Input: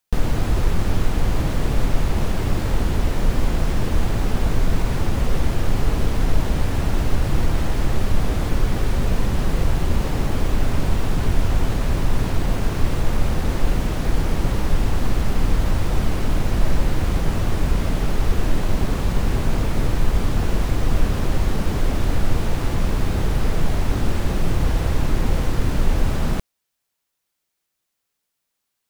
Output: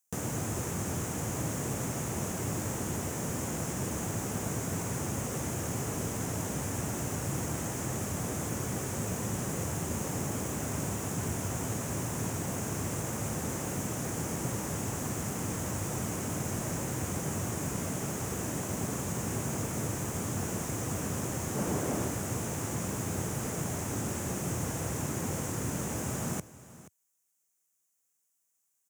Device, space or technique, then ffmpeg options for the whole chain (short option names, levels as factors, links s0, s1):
budget condenser microphone: -filter_complex "[0:a]asettb=1/sr,asplit=3[s0][s1][s2];[s0]atrim=end=21.564[s3];[s1]atrim=start=21.56:end=22.08,asetpts=PTS-STARTPTS,afade=t=in:d=0.004:c=qsin,afade=t=out:st=0.516:d=0.004:c=qsin,equalizer=f=500:t=o:w=2.9:g=5.5[s4];[s2]atrim=start=22.076[s5];[s3][s4]acrossfade=d=0.004:c1=hsin:c2=qsin[s6];[s6][s5]acrossfade=d=0.004:c1=qsin:c2=hsin,highpass=f=97:w=0.5412,highpass=f=97:w=1.3066,highshelf=f=5400:t=q:w=3:g=8.5,aecho=1:1:479:0.133,volume=0.376"